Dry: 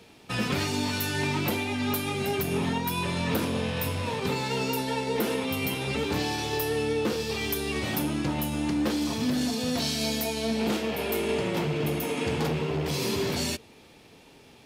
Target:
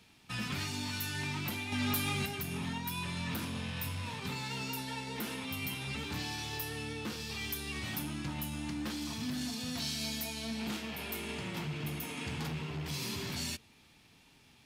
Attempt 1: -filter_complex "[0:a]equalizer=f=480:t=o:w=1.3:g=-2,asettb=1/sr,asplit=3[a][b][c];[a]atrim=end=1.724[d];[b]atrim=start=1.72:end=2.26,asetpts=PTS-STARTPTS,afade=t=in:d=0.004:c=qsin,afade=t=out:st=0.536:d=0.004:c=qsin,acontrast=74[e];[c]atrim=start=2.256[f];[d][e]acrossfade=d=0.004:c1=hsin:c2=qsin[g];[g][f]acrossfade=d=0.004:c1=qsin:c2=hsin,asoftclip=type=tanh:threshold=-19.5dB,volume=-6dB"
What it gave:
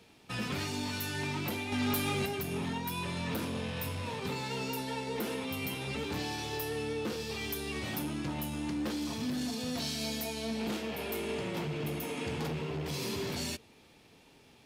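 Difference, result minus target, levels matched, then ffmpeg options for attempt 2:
500 Hz band +7.5 dB
-filter_complex "[0:a]equalizer=f=480:t=o:w=1.3:g=-13,asettb=1/sr,asplit=3[a][b][c];[a]atrim=end=1.724[d];[b]atrim=start=1.72:end=2.26,asetpts=PTS-STARTPTS,afade=t=in:d=0.004:c=qsin,afade=t=out:st=0.536:d=0.004:c=qsin,acontrast=74[e];[c]atrim=start=2.256[f];[d][e]acrossfade=d=0.004:c1=hsin:c2=qsin[g];[g][f]acrossfade=d=0.004:c1=qsin:c2=hsin,asoftclip=type=tanh:threshold=-19.5dB,volume=-6dB"

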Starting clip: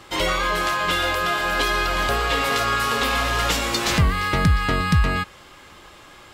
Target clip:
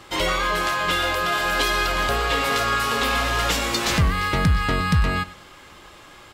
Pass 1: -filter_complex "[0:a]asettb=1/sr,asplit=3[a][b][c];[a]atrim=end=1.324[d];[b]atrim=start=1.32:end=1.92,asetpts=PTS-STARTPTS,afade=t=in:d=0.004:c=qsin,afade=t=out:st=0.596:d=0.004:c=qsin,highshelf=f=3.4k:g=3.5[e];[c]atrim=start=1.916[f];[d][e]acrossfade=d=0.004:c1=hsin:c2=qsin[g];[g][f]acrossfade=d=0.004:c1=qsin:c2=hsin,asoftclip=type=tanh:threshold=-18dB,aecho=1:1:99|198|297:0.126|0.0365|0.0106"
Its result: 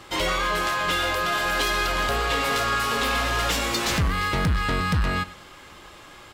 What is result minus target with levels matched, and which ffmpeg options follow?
soft clip: distortion +12 dB
-filter_complex "[0:a]asettb=1/sr,asplit=3[a][b][c];[a]atrim=end=1.324[d];[b]atrim=start=1.32:end=1.92,asetpts=PTS-STARTPTS,afade=t=in:d=0.004:c=qsin,afade=t=out:st=0.596:d=0.004:c=qsin,highshelf=f=3.4k:g=3.5[e];[c]atrim=start=1.916[f];[d][e]acrossfade=d=0.004:c1=hsin:c2=qsin[g];[g][f]acrossfade=d=0.004:c1=qsin:c2=hsin,asoftclip=type=tanh:threshold=-9dB,aecho=1:1:99|198|297:0.126|0.0365|0.0106"

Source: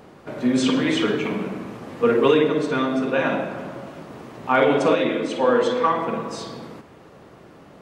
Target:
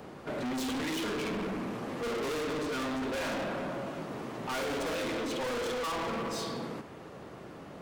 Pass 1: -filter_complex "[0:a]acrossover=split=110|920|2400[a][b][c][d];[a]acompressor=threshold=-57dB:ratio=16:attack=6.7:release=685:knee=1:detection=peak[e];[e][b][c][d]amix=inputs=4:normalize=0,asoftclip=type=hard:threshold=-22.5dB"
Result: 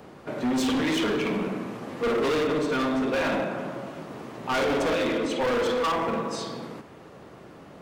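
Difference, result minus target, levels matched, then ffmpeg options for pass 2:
hard clip: distortion -4 dB
-filter_complex "[0:a]acrossover=split=110|920|2400[a][b][c][d];[a]acompressor=threshold=-57dB:ratio=16:attack=6.7:release=685:knee=1:detection=peak[e];[e][b][c][d]amix=inputs=4:normalize=0,asoftclip=type=hard:threshold=-32.5dB"

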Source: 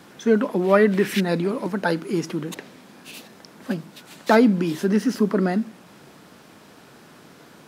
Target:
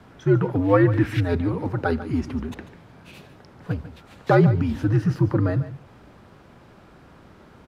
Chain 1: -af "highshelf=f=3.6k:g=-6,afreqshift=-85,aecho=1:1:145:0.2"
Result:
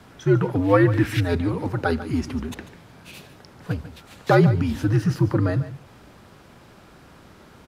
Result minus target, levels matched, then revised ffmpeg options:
8000 Hz band +8.0 dB
-af "highshelf=f=3.6k:g=-16.5,afreqshift=-85,aecho=1:1:145:0.2"

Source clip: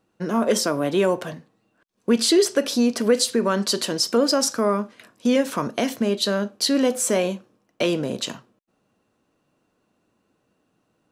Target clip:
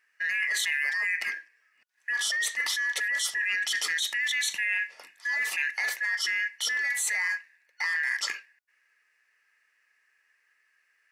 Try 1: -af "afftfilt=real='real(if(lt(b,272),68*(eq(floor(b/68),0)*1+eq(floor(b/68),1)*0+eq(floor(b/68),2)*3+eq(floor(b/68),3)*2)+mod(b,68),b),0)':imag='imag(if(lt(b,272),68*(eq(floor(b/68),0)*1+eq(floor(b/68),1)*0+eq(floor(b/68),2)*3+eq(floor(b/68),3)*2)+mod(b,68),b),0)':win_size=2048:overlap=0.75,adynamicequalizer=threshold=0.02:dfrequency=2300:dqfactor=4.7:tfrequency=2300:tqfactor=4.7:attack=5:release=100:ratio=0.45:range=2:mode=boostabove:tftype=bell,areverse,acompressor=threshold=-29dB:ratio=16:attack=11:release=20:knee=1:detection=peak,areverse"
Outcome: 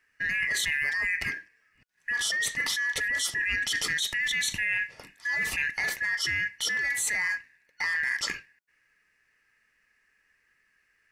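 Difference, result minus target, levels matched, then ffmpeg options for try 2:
500 Hz band +5.0 dB
-af "afftfilt=real='real(if(lt(b,272),68*(eq(floor(b/68),0)*1+eq(floor(b/68),1)*0+eq(floor(b/68),2)*3+eq(floor(b/68),3)*2)+mod(b,68),b),0)':imag='imag(if(lt(b,272),68*(eq(floor(b/68),0)*1+eq(floor(b/68),1)*0+eq(floor(b/68),2)*3+eq(floor(b/68),3)*2)+mod(b,68),b),0)':win_size=2048:overlap=0.75,adynamicequalizer=threshold=0.02:dfrequency=2300:dqfactor=4.7:tfrequency=2300:tqfactor=4.7:attack=5:release=100:ratio=0.45:range=2:mode=boostabove:tftype=bell,highpass=620,areverse,acompressor=threshold=-29dB:ratio=16:attack=11:release=20:knee=1:detection=peak,areverse"

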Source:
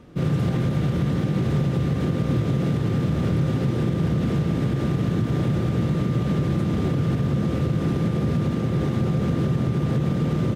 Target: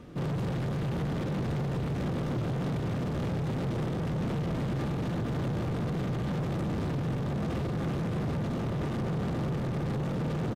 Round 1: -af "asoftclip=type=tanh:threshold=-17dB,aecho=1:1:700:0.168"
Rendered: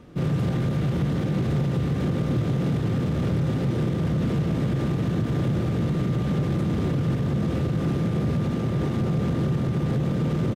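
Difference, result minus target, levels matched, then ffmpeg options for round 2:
soft clip: distortion -11 dB
-af "asoftclip=type=tanh:threshold=-29dB,aecho=1:1:700:0.168"

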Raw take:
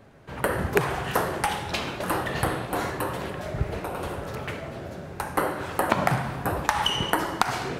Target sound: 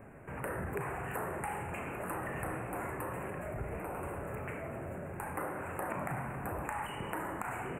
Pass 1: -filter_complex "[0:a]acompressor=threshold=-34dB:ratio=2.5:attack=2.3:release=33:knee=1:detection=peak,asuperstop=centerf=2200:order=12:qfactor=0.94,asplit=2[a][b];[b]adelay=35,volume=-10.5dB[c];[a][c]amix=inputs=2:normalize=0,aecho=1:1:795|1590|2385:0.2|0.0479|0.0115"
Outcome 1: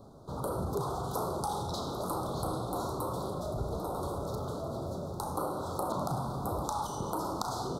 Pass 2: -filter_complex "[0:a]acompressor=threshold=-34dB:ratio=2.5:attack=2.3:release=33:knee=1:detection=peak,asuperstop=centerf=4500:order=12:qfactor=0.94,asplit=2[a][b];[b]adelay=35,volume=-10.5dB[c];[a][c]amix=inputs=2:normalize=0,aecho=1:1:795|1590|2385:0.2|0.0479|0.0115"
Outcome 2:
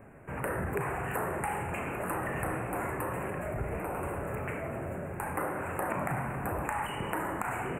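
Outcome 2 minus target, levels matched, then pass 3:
compressor: peak gain reduction -5 dB
-filter_complex "[0:a]acompressor=threshold=-42dB:ratio=2.5:attack=2.3:release=33:knee=1:detection=peak,asuperstop=centerf=4500:order=12:qfactor=0.94,asplit=2[a][b];[b]adelay=35,volume=-10.5dB[c];[a][c]amix=inputs=2:normalize=0,aecho=1:1:795|1590|2385:0.2|0.0479|0.0115"

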